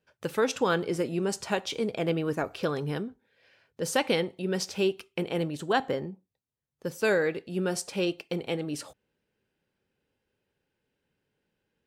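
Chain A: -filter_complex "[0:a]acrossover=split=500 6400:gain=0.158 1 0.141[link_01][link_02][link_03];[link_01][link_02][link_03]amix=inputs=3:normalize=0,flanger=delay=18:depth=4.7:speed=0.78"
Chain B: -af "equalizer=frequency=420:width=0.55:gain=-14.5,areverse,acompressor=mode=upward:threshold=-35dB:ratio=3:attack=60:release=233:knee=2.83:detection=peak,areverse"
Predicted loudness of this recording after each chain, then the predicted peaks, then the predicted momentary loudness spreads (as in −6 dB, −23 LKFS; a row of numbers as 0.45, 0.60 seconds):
−36.5, −35.5 LKFS; −15.5, −14.0 dBFS; 12, 18 LU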